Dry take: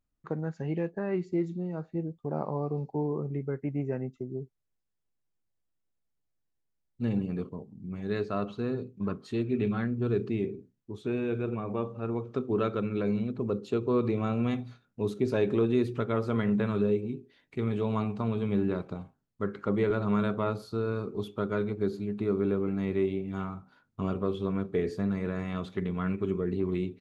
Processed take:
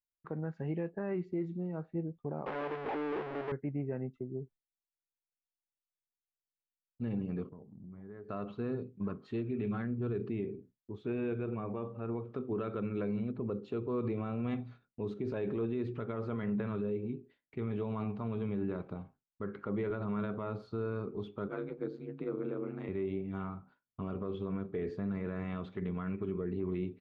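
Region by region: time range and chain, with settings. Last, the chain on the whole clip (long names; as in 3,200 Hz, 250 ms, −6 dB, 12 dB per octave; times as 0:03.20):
0:02.46–0:03.52: sign of each sample alone + low-pass filter 2,600 Hz + low shelf with overshoot 220 Hz −12.5 dB, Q 1.5
0:07.49–0:08.29: Savitzky-Golay smoothing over 41 samples + downward compressor 4 to 1, threshold −43 dBFS
0:21.48–0:22.89: high-pass filter 230 Hz 24 dB per octave + ring modulation 63 Hz
whole clip: noise gate with hold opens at −48 dBFS; low-pass filter 2,700 Hz 12 dB per octave; brickwall limiter −23.5 dBFS; level −3.5 dB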